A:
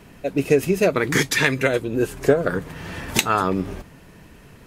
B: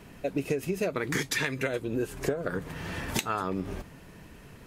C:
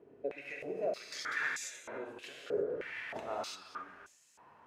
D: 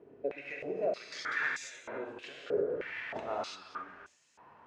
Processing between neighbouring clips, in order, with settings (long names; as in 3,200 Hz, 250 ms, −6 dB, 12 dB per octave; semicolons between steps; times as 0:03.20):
downward compressor 6 to 1, threshold −23 dBFS, peak gain reduction 12 dB; level −3 dB
reverb whose tail is shaped and stops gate 370 ms flat, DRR −2.5 dB; band-pass on a step sequencer 3.2 Hz 430–7,000 Hz
high-frequency loss of the air 96 metres; level +3 dB